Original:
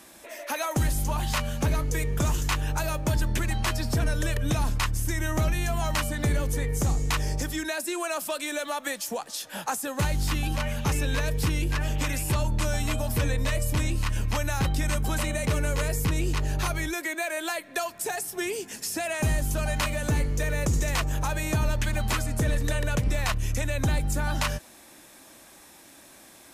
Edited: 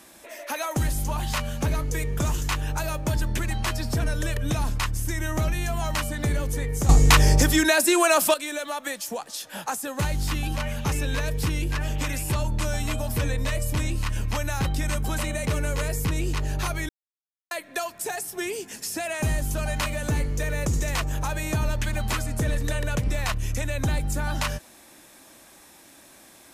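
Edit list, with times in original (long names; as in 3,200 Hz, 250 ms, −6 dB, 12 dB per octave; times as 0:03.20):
0:06.89–0:08.34: clip gain +11 dB
0:16.89–0:17.51: silence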